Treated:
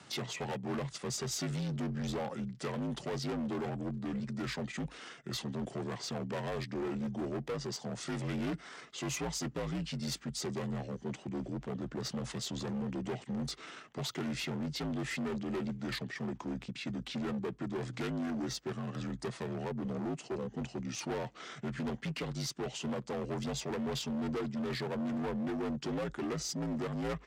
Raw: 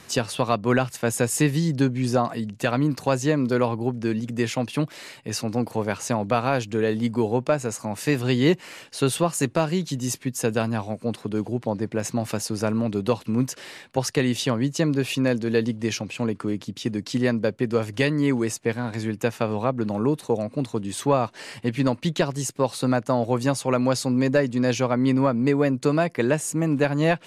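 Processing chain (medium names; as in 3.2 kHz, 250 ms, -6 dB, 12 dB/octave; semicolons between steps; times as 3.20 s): overload inside the chain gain 25.5 dB; frequency shift +71 Hz; pitch shift -6 st; trim -7.5 dB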